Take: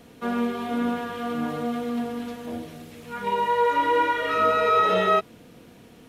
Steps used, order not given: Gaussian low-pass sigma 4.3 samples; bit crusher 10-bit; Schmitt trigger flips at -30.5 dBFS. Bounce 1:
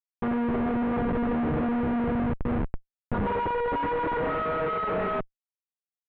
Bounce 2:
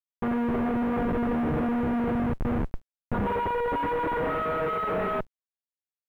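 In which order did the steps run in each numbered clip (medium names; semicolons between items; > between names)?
bit crusher > Schmitt trigger > Gaussian low-pass; Schmitt trigger > Gaussian low-pass > bit crusher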